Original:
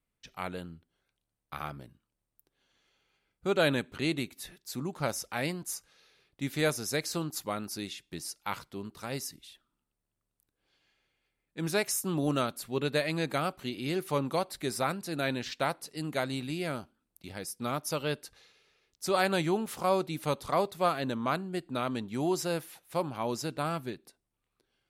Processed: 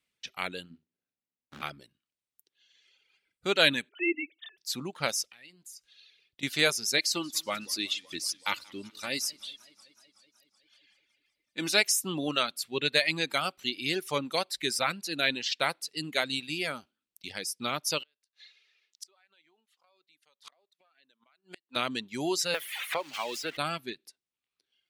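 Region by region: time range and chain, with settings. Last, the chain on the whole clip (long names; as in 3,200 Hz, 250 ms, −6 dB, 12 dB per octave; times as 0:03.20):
0:00.70–0:01.62: running median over 41 samples + parametric band 230 Hz +8 dB 0.62 octaves + double-tracking delay 40 ms −8.5 dB
0:03.89–0:04.58: three sine waves on the formant tracks + parametric band 660 Hz +8.5 dB 0.27 octaves
0:05.24–0:06.43: parametric band 1,000 Hz −4 dB 2.5 octaves + downward compressor, threshold −48 dBFS
0:06.97–0:11.81: comb filter 3.4 ms, depth 44% + feedback echo with a swinging delay time 187 ms, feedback 68%, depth 167 cents, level −15 dB
0:18.02–0:21.76: meter weighting curve A + downward compressor, threshold −30 dBFS + gate with flip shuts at −34 dBFS, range −33 dB
0:22.54–0:23.57: spike at every zero crossing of −25 dBFS + three-way crossover with the lows and the highs turned down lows −13 dB, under 390 Hz, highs −16 dB, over 2,900 Hz + multiband upward and downward compressor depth 100%
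whole clip: meter weighting curve D; reverb reduction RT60 1.8 s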